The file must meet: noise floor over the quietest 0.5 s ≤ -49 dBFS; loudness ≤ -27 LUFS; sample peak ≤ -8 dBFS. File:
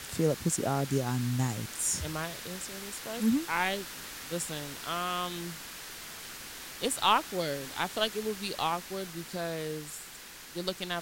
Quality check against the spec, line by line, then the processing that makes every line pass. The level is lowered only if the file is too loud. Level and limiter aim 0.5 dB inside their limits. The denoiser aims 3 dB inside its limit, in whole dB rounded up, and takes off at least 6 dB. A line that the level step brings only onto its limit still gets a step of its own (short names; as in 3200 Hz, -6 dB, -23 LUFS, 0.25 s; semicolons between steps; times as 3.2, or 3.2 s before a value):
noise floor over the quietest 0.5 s -47 dBFS: fail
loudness -32.5 LUFS: OK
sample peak -10.5 dBFS: OK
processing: denoiser 6 dB, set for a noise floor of -47 dBFS